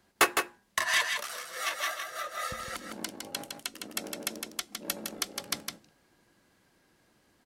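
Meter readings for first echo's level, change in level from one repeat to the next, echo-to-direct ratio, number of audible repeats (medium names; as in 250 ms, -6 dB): -5.5 dB, no regular repeats, -5.5 dB, 1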